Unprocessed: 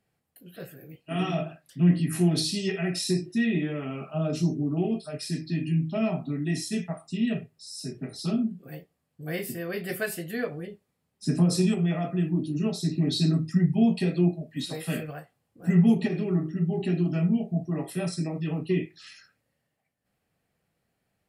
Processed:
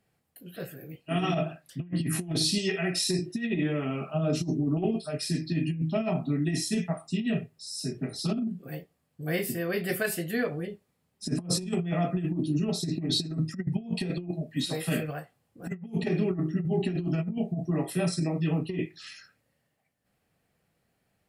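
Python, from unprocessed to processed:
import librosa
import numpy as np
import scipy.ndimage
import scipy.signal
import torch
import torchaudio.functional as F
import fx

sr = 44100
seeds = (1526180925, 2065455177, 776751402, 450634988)

y = fx.low_shelf(x, sr, hz=290.0, db=-7.5, at=(2.58, 3.19))
y = fx.over_compress(y, sr, threshold_db=-27.0, ratio=-0.5)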